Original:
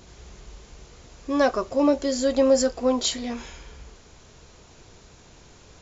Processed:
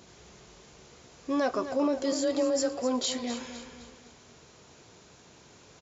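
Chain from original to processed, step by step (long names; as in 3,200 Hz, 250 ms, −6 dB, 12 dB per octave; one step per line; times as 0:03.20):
brickwall limiter −16.5 dBFS, peak gain reduction 8 dB
high-pass filter 120 Hz 12 dB per octave
repeating echo 255 ms, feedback 42%, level −11 dB
0:02.12–0:02.82: frequency shifter +24 Hz
level −3 dB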